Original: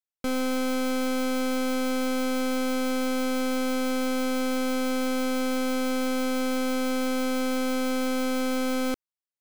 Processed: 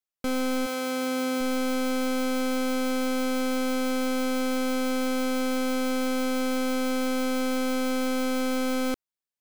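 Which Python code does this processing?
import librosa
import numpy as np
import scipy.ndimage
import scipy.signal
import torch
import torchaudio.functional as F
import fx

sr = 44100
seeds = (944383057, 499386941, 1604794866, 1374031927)

y = fx.highpass(x, sr, hz=fx.line((0.65, 440.0), (1.4, 120.0)), slope=12, at=(0.65, 1.4), fade=0.02)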